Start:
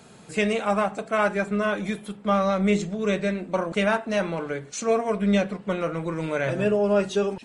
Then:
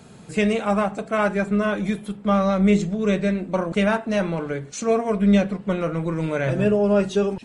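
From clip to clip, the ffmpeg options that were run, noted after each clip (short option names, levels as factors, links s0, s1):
-af "lowshelf=f=260:g=8.5"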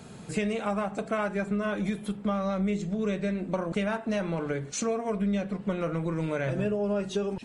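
-af "acompressor=threshold=0.0501:ratio=6"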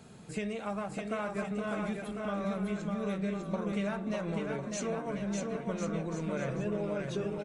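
-af "aecho=1:1:600|1050|1388|1641|1830:0.631|0.398|0.251|0.158|0.1,volume=0.447"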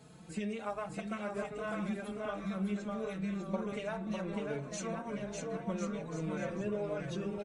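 -filter_complex "[0:a]asplit=2[s0][s1];[s1]adelay=4.3,afreqshift=1.3[s2];[s0][s2]amix=inputs=2:normalize=1"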